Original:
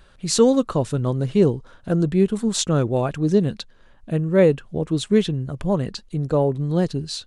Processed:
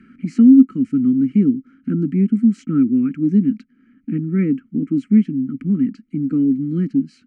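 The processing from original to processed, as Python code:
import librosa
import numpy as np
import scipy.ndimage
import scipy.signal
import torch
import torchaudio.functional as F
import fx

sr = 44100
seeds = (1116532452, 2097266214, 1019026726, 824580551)

y = fx.vowel_filter(x, sr, vowel='i')
y = fx.high_shelf(y, sr, hz=8500.0, db=-3.0)
y = fx.fixed_phaser(y, sr, hz=1500.0, stages=4)
y = fx.small_body(y, sr, hz=(220.0, 1300.0), ring_ms=30, db=15)
y = fx.band_squash(y, sr, depth_pct=40)
y = y * librosa.db_to_amplitude(6.5)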